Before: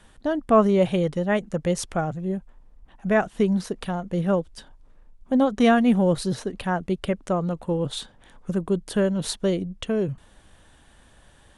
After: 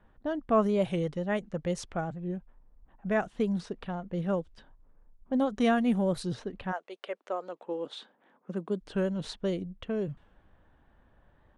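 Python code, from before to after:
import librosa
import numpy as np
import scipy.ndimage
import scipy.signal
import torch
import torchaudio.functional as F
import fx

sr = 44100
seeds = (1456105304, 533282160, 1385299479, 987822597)

y = fx.env_lowpass(x, sr, base_hz=1400.0, full_db=-17.0)
y = fx.highpass(y, sr, hz=fx.line((6.71, 550.0), (8.81, 160.0)), slope=24, at=(6.71, 8.81), fade=0.02)
y = fx.record_warp(y, sr, rpm=45.0, depth_cents=100.0)
y = y * 10.0 ** (-7.5 / 20.0)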